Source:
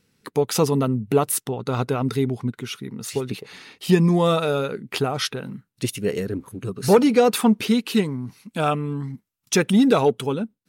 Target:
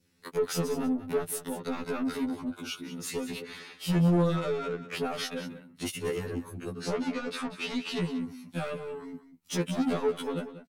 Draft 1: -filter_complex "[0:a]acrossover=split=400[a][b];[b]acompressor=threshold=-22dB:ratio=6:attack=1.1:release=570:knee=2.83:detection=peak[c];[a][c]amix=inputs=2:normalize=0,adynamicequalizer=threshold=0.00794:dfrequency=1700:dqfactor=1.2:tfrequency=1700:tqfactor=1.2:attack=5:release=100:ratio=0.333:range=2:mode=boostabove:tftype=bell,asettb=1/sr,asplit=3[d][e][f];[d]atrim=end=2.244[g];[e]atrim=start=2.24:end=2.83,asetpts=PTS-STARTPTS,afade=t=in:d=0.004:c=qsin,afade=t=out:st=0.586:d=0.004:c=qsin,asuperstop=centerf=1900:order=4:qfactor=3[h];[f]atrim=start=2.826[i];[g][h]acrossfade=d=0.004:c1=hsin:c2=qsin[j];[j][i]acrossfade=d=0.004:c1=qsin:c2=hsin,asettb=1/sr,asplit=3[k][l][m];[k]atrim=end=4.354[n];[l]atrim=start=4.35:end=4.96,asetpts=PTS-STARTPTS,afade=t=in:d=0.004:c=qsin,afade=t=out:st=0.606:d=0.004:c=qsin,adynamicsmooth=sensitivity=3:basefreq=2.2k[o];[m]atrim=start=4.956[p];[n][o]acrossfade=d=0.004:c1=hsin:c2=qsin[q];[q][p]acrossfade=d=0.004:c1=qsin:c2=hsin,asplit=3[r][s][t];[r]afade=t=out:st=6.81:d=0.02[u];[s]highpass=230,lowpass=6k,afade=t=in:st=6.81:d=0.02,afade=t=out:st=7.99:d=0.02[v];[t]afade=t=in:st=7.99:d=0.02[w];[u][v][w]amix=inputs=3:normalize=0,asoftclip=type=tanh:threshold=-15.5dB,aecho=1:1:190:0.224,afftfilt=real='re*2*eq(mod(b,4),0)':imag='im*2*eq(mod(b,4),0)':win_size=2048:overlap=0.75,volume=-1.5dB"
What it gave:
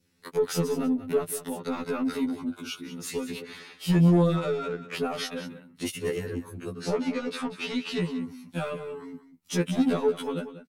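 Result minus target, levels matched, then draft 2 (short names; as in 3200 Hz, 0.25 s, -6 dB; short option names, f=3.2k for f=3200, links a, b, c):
soft clip: distortion -6 dB
-filter_complex "[0:a]acrossover=split=400[a][b];[b]acompressor=threshold=-22dB:ratio=6:attack=1.1:release=570:knee=2.83:detection=peak[c];[a][c]amix=inputs=2:normalize=0,adynamicequalizer=threshold=0.00794:dfrequency=1700:dqfactor=1.2:tfrequency=1700:tqfactor=1.2:attack=5:release=100:ratio=0.333:range=2:mode=boostabove:tftype=bell,asettb=1/sr,asplit=3[d][e][f];[d]atrim=end=2.244[g];[e]atrim=start=2.24:end=2.83,asetpts=PTS-STARTPTS,afade=t=in:d=0.004:c=qsin,afade=t=out:st=0.586:d=0.004:c=qsin,asuperstop=centerf=1900:order=4:qfactor=3[h];[f]atrim=start=2.826[i];[g][h]acrossfade=d=0.004:c1=hsin:c2=qsin[j];[j][i]acrossfade=d=0.004:c1=qsin:c2=hsin,asettb=1/sr,asplit=3[k][l][m];[k]atrim=end=4.354[n];[l]atrim=start=4.35:end=4.96,asetpts=PTS-STARTPTS,afade=t=in:d=0.004:c=qsin,afade=t=out:st=0.606:d=0.004:c=qsin,adynamicsmooth=sensitivity=3:basefreq=2.2k[o];[m]atrim=start=4.956[p];[n][o]acrossfade=d=0.004:c1=hsin:c2=qsin[q];[q][p]acrossfade=d=0.004:c1=qsin:c2=hsin,asplit=3[r][s][t];[r]afade=t=out:st=6.81:d=0.02[u];[s]highpass=230,lowpass=6k,afade=t=in:st=6.81:d=0.02,afade=t=out:st=7.99:d=0.02[v];[t]afade=t=in:st=7.99:d=0.02[w];[u][v][w]amix=inputs=3:normalize=0,asoftclip=type=tanh:threshold=-22dB,aecho=1:1:190:0.224,afftfilt=real='re*2*eq(mod(b,4),0)':imag='im*2*eq(mod(b,4),0)':win_size=2048:overlap=0.75,volume=-1.5dB"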